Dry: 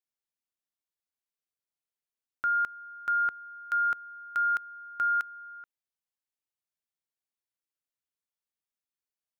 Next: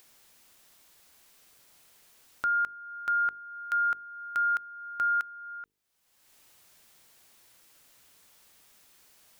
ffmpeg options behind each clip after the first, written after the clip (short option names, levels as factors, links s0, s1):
-af "bandreject=f=50:t=h:w=6,bandreject=f=100:t=h:w=6,bandreject=f=150:t=h:w=6,bandreject=f=200:t=h:w=6,bandreject=f=250:t=h:w=6,bandreject=f=300:t=h:w=6,bandreject=f=350:t=h:w=6,bandreject=f=400:t=h:w=6,bandreject=f=450:t=h:w=6,acompressor=mode=upward:threshold=0.0178:ratio=2.5"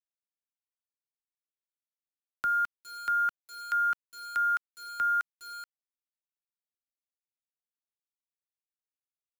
-filter_complex "[0:a]acrossover=split=180|420|920[s0][s1][s2][s3];[s2]alimiter=level_in=5.62:limit=0.0631:level=0:latency=1:release=411,volume=0.178[s4];[s0][s1][s4][s3]amix=inputs=4:normalize=0,aeval=exprs='val(0)*gte(abs(val(0)),0.00944)':c=same"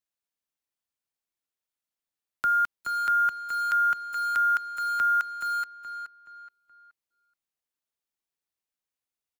-filter_complex "[0:a]asplit=2[s0][s1];[s1]adelay=424,lowpass=f=3100:p=1,volume=0.447,asplit=2[s2][s3];[s3]adelay=424,lowpass=f=3100:p=1,volume=0.38,asplit=2[s4][s5];[s5]adelay=424,lowpass=f=3100:p=1,volume=0.38,asplit=2[s6][s7];[s7]adelay=424,lowpass=f=3100:p=1,volume=0.38[s8];[s0][s2][s4][s6][s8]amix=inputs=5:normalize=0,volume=1.58"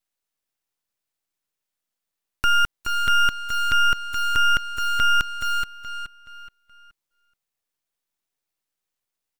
-af "aeval=exprs='max(val(0),0)':c=same,volume=2.82"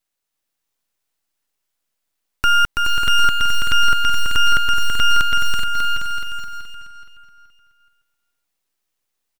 -af "aecho=1:1:330|594|805.2|974.2|1109:0.631|0.398|0.251|0.158|0.1,volume=1.58"